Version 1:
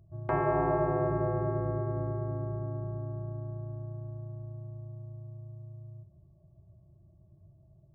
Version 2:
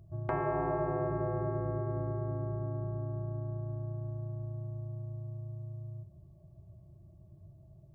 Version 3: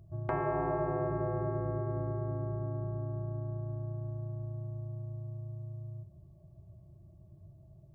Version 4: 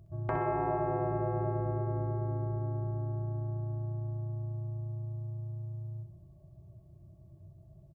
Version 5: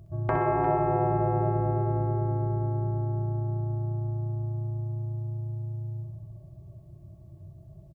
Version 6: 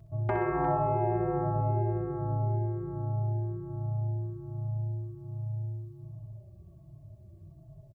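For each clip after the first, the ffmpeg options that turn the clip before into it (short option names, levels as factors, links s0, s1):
-af "acompressor=threshold=0.0112:ratio=2,volume=1.5"
-af anull
-af "aecho=1:1:63|126|189|252|315|378:0.376|0.203|0.11|0.0592|0.032|0.0173"
-af "aecho=1:1:353:0.299,volume=2"
-filter_complex "[0:a]asplit=2[s0][s1];[s1]adelay=4.1,afreqshift=-1.3[s2];[s0][s2]amix=inputs=2:normalize=1"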